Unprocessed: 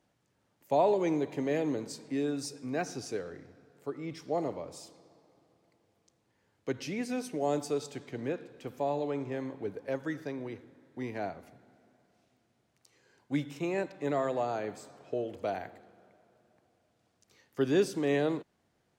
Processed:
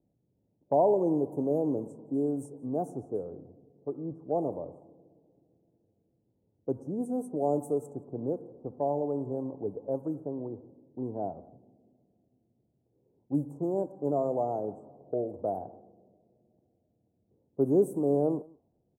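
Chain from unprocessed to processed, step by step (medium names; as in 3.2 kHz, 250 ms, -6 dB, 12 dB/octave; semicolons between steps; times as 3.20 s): inverse Chebyshev band-stop 1.9–4.6 kHz, stop band 60 dB; level-controlled noise filter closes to 400 Hz, open at -30 dBFS; echo from a far wall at 30 m, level -25 dB; trim +2.5 dB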